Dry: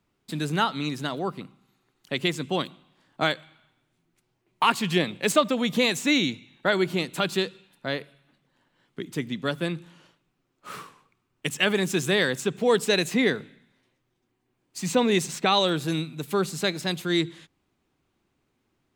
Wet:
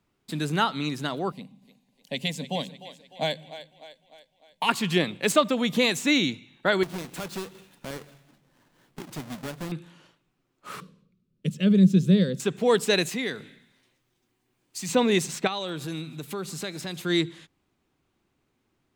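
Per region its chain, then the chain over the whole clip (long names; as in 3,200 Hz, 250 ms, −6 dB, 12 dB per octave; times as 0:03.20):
0:01.32–0:04.69: phaser with its sweep stopped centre 350 Hz, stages 6 + echo with a time of its own for lows and highs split 310 Hz, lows 127 ms, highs 301 ms, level −13.5 dB
0:06.83–0:09.72: each half-wave held at its own peak + downward compressor 2 to 1, threshold −42 dBFS
0:10.80–0:12.40: mains-hum notches 50/100 Hz + de-essing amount 35% + drawn EQ curve 120 Hz 0 dB, 190 Hz +14 dB, 290 Hz −5 dB, 540 Hz −1 dB, 800 Hz −24 dB, 1,300 Hz −15 dB, 1,900 Hz −17 dB, 4,100 Hz −7 dB, 7,900 Hz −15 dB
0:13.09–0:14.89: high-shelf EQ 2,400 Hz +8 dB + downward compressor 1.5 to 1, threshold −41 dBFS
0:15.47–0:17.02: downward compressor 2.5 to 1, threshold −32 dBFS + feedback echo with a high-pass in the loop 153 ms, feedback 71%, high-pass 950 Hz, level −20.5 dB
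whole clip: no processing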